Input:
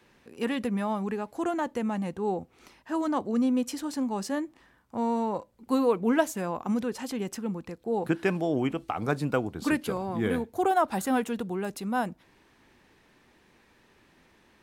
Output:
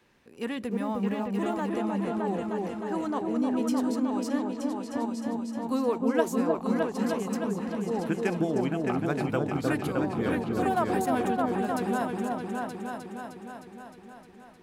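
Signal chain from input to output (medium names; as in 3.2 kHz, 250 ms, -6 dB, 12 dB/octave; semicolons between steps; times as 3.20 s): 0.71–1.70 s: small samples zeroed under -46.5 dBFS; 5.06–5.60 s: time-frequency box 300–11000 Hz -26 dB; delay with an opening low-pass 308 ms, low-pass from 750 Hz, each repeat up 2 oct, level 0 dB; trim -3.5 dB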